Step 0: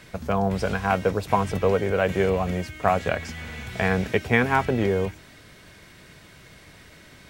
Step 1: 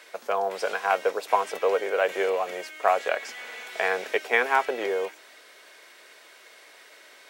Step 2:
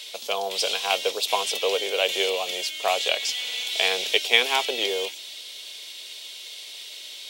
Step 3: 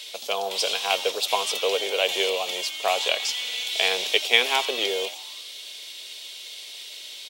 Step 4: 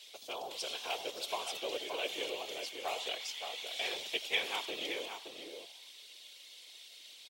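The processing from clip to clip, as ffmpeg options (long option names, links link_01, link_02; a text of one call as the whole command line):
ffmpeg -i in.wav -af "highpass=frequency=430:width=0.5412,highpass=frequency=430:width=1.3066" out.wav
ffmpeg -i in.wav -af "highshelf=frequency=2300:width_type=q:width=3:gain=13,volume=-1dB" out.wav
ffmpeg -i in.wav -filter_complex "[0:a]asplit=6[link_01][link_02][link_03][link_04][link_05][link_06];[link_02]adelay=84,afreqshift=140,volume=-19dB[link_07];[link_03]adelay=168,afreqshift=280,volume=-23.6dB[link_08];[link_04]adelay=252,afreqshift=420,volume=-28.2dB[link_09];[link_05]adelay=336,afreqshift=560,volume=-32.7dB[link_10];[link_06]adelay=420,afreqshift=700,volume=-37.3dB[link_11];[link_01][link_07][link_08][link_09][link_10][link_11]amix=inputs=6:normalize=0" out.wav
ffmpeg -i in.wav -filter_complex "[0:a]afftfilt=real='hypot(re,im)*cos(2*PI*random(0))':imag='hypot(re,im)*sin(2*PI*random(1))':win_size=512:overlap=0.75,asplit=2[link_01][link_02];[link_02]adelay=571.4,volume=-6dB,highshelf=frequency=4000:gain=-12.9[link_03];[link_01][link_03]amix=inputs=2:normalize=0,volume=-8.5dB" out.wav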